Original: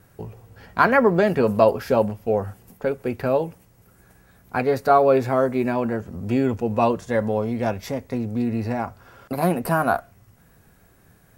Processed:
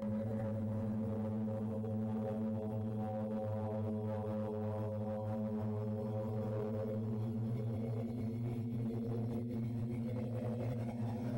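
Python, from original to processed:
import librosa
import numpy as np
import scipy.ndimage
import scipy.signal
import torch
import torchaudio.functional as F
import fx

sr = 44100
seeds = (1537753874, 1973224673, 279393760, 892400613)

y = fx.peak_eq(x, sr, hz=1600.0, db=-13.0, octaves=2.3)
y = fx.paulstretch(y, sr, seeds[0], factor=31.0, window_s=0.25, from_s=7.23)
y = fx.level_steps(y, sr, step_db=19)
y = fx.chorus_voices(y, sr, voices=6, hz=0.2, base_ms=23, depth_ms=1.1, mix_pct=65)
y = np.clip(10.0 ** (35.5 / 20.0) * y, -1.0, 1.0) / 10.0 ** (35.5 / 20.0)
y = y * 10.0 ** (1.5 / 20.0)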